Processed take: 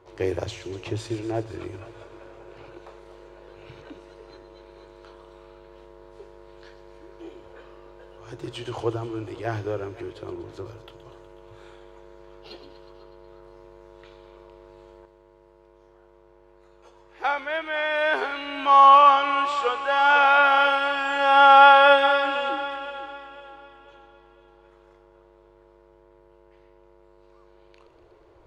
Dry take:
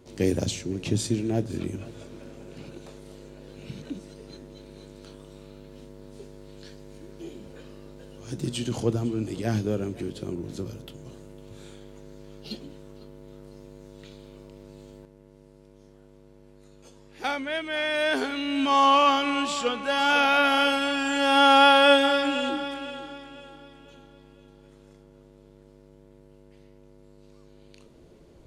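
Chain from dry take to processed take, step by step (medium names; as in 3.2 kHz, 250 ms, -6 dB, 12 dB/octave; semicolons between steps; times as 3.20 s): FFT filter 110 Hz 0 dB, 220 Hz -20 dB, 340 Hz +3 dB, 610 Hz +5 dB, 1 kHz +12 dB, 8.9 kHz -11 dB; on a send: feedback echo behind a high-pass 122 ms, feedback 69%, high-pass 2.4 kHz, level -10.5 dB; on the sum: trim -3.5 dB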